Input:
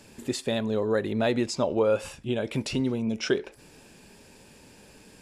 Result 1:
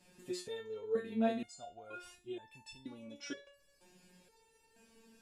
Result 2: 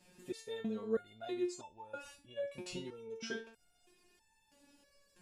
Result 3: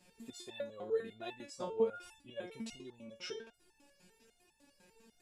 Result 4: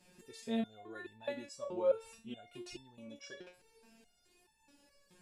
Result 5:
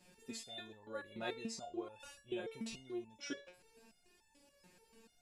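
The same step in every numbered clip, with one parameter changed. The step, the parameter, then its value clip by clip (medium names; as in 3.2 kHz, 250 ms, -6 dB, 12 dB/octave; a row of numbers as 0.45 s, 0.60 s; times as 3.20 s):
resonator arpeggio, rate: 2.1 Hz, 3.1 Hz, 10 Hz, 4.7 Hz, 6.9 Hz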